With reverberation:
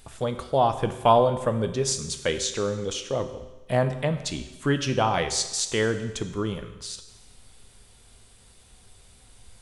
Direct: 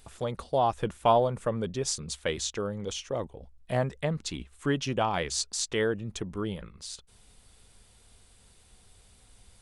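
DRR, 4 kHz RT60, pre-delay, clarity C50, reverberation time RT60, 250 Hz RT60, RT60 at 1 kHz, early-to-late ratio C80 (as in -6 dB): 8.0 dB, 1.1 s, 8 ms, 10.5 dB, 1.1 s, 1.1 s, 1.1 s, 12.5 dB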